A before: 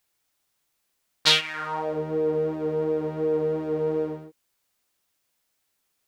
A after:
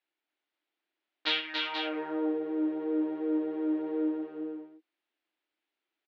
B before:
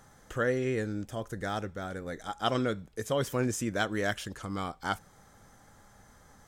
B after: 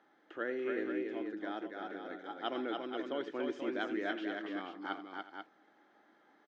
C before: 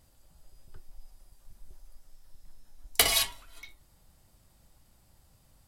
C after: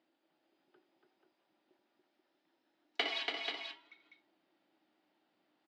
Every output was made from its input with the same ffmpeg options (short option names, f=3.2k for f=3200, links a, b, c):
-filter_complex "[0:a]highpass=f=280:w=0.5412,highpass=f=280:w=1.3066,equalizer=f=320:t=q:w=4:g=10,equalizer=f=500:t=q:w=4:g=-5,equalizer=f=1.1k:t=q:w=4:g=-5,lowpass=f=3.5k:w=0.5412,lowpass=f=3.5k:w=1.3066,asplit=2[a][b];[b]aecho=0:1:83|285|370|485:0.178|0.631|0.133|0.447[c];[a][c]amix=inputs=2:normalize=0,volume=-7.5dB"